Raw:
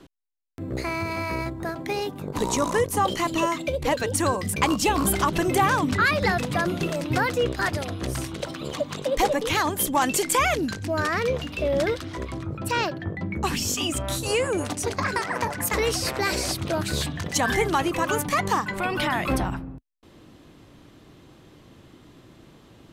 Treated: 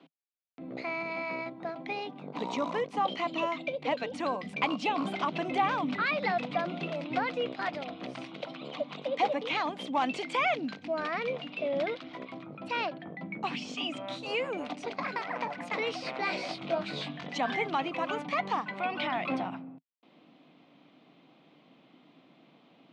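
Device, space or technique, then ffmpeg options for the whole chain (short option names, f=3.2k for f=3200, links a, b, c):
kitchen radio: -filter_complex "[0:a]highpass=230,highpass=180,equalizer=f=260:t=q:w=4:g=5,equalizer=f=370:t=q:w=4:g=-6,equalizer=f=710:t=q:w=4:g=7,equalizer=f=1.7k:t=q:w=4:g=-7,equalizer=f=2.7k:t=q:w=4:g=-5,lowpass=f=3.9k:w=0.5412,lowpass=f=3.9k:w=1.3066,equalizer=f=160:t=o:w=0.67:g=9,equalizer=f=2.5k:t=o:w=0.67:g=9,equalizer=f=10k:t=o:w=0.67:g=8,highshelf=f=8.2k:g=4,asettb=1/sr,asplit=3[a][b][c];[a]atrim=end=16.184[d];[b]atrim=start=16.18:end=17.38,asetpts=PTS-STARTPTS,afade=t=in:d=0.004:c=qsin,afade=t=out:st=1.196:d=0.004:c=qsin,asplit=2[e][f];[f]adelay=21,volume=-6dB[g];[e][g]amix=inputs=2:normalize=0,atrim=end_sample=52920[h];[c]atrim=start=17.376[i];[d][h]acrossfade=d=0.004:c1=hsin:c2=qsin[j];[j][i]acrossfade=d=0.004:c1=qsin:c2=hsin,volume=-8.5dB"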